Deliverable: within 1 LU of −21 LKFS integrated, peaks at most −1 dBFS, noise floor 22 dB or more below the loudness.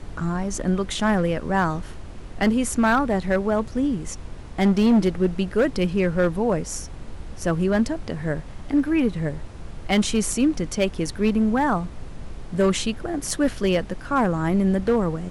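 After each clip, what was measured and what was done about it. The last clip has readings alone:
share of clipped samples 1.2%; peaks flattened at −13.0 dBFS; background noise floor −38 dBFS; target noise floor −45 dBFS; integrated loudness −23.0 LKFS; sample peak −13.0 dBFS; target loudness −21.0 LKFS
→ clipped peaks rebuilt −13 dBFS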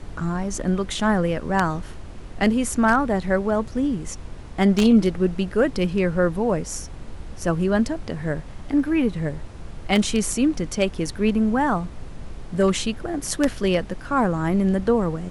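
share of clipped samples 0.0%; background noise floor −38 dBFS; target noise floor −45 dBFS
→ noise reduction from a noise print 7 dB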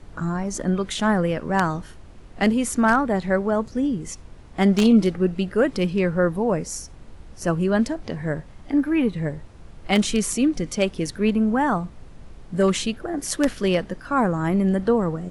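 background noise floor −44 dBFS; target noise floor −45 dBFS
→ noise reduction from a noise print 6 dB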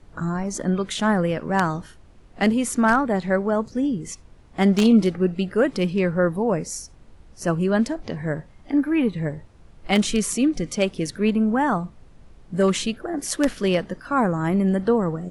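background noise floor −49 dBFS; integrated loudness −22.5 LKFS; sample peak −4.0 dBFS; target loudness −21.0 LKFS
→ level +1.5 dB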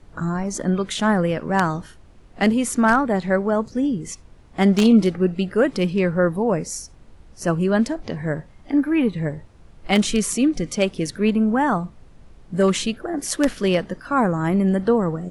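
integrated loudness −21.0 LKFS; sample peak −2.5 dBFS; background noise floor −48 dBFS

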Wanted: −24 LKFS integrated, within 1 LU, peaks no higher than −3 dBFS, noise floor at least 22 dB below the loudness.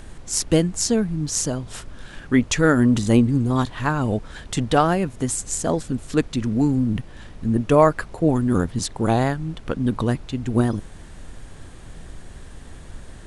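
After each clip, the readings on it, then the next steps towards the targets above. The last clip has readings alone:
background noise floor −41 dBFS; target noise floor −44 dBFS; integrated loudness −21.5 LKFS; sample peak −3.0 dBFS; target loudness −24.0 LKFS
→ noise reduction from a noise print 6 dB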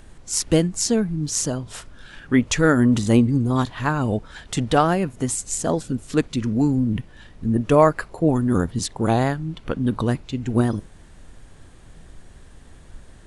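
background noise floor −46 dBFS; integrated loudness −21.5 LKFS; sample peak −3.0 dBFS; target loudness −24.0 LKFS
→ level −2.5 dB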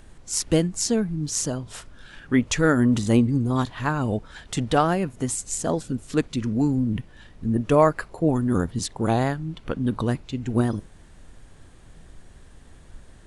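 integrated loudness −24.0 LKFS; sample peak −5.5 dBFS; background noise floor −49 dBFS

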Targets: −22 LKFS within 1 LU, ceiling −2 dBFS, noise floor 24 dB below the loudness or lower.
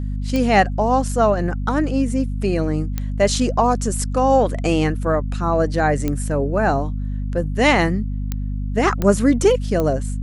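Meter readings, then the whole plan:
number of clicks 6; mains hum 50 Hz; hum harmonics up to 250 Hz; level of the hum −21 dBFS; integrated loudness −19.5 LKFS; sample peak −2.0 dBFS; target loudness −22.0 LKFS
→ click removal
mains-hum notches 50/100/150/200/250 Hz
level −2.5 dB

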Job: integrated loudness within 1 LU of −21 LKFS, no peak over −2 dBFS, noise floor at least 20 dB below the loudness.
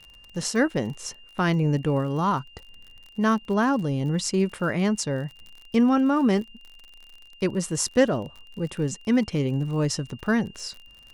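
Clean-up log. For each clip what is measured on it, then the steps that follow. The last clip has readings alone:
crackle rate 43 per second; interfering tone 2,800 Hz; level of the tone −49 dBFS; integrated loudness −25.0 LKFS; sample peak −7.0 dBFS; target loudness −21.0 LKFS
→ click removal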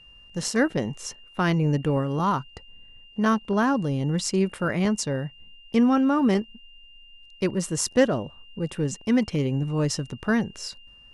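crackle rate 0.090 per second; interfering tone 2,800 Hz; level of the tone −49 dBFS
→ notch filter 2,800 Hz, Q 30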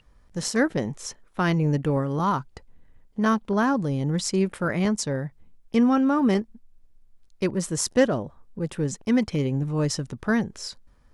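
interfering tone none found; integrated loudness −25.0 LKFS; sample peak −7.0 dBFS; target loudness −21.0 LKFS
→ level +4 dB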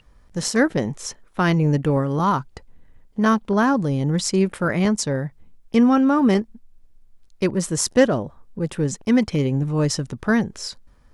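integrated loudness −21.0 LKFS; sample peak −3.0 dBFS; background noise floor −53 dBFS

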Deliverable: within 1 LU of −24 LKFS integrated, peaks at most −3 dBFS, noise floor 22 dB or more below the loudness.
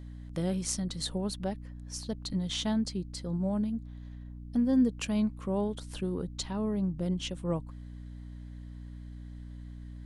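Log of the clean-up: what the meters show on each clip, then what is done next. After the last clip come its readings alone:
mains hum 60 Hz; hum harmonics up to 300 Hz; level of the hum −41 dBFS; integrated loudness −32.5 LKFS; sample peak −15.5 dBFS; target loudness −24.0 LKFS
→ mains-hum notches 60/120/180/240/300 Hz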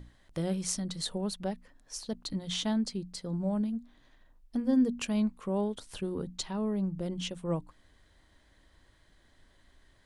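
mains hum none found; integrated loudness −33.0 LKFS; sample peak −15.0 dBFS; target loudness −24.0 LKFS
→ level +9 dB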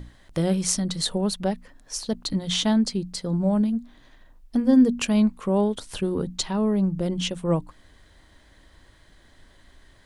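integrated loudness −24.0 LKFS; sample peak −6.0 dBFS; background noise floor −56 dBFS

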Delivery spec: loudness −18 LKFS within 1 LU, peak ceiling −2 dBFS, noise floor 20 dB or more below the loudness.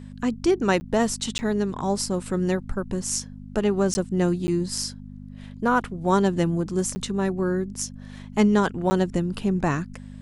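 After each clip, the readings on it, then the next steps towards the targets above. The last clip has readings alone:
number of dropouts 6; longest dropout 10 ms; mains hum 50 Hz; hum harmonics up to 250 Hz; level of the hum −38 dBFS; integrated loudness −24.5 LKFS; sample peak −5.5 dBFS; target loudness −18.0 LKFS
→ repair the gap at 0:00.80/0:01.38/0:03.94/0:04.47/0:06.95/0:08.90, 10 ms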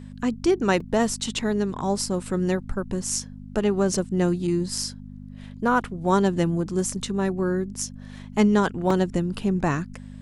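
number of dropouts 0; mains hum 50 Hz; hum harmonics up to 250 Hz; level of the hum −38 dBFS
→ hum removal 50 Hz, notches 5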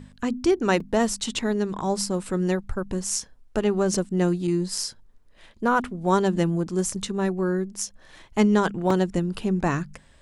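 mains hum none found; integrated loudness −25.0 LKFS; sample peak −5.5 dBFS; target loudness −18.0 LKFS
→ level +7 dB
brickwall limiter −2 dBFS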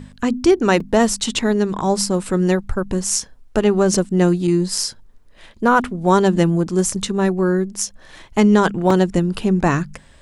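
integrated loudness −18.0 LKFS; sample peak −2.0 dBFS; background noise floor −47 dBFS

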